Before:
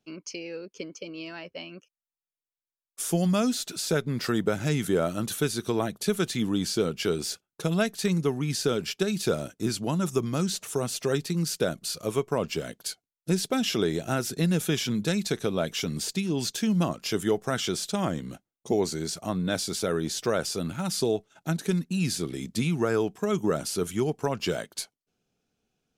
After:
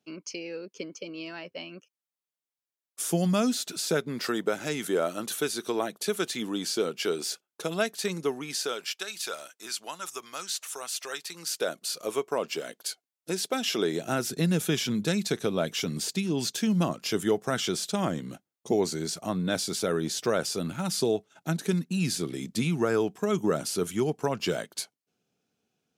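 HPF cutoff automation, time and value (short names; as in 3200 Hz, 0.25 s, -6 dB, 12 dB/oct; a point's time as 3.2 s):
3.68 s 140 Hz
4.38 s 320 Hz
8.31 s 320 Hz
8.97 s 1000 Hz
11.23 s 1000 Hz
11.79 s 360 Hz
13.62 s 360 Hz
14.3 s 120 Hz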